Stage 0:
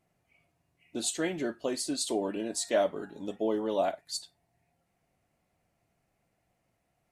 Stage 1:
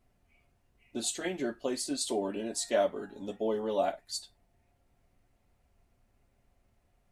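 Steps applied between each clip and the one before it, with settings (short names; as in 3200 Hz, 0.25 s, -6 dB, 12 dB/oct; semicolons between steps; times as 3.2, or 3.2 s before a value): added noise brown -67 dBFS; notch comb 160 Hz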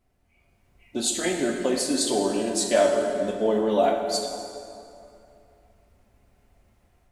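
AGC gain up to 7 dB; plate-style reverb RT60 2.7 s, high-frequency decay 0.65×, DRR 2 dB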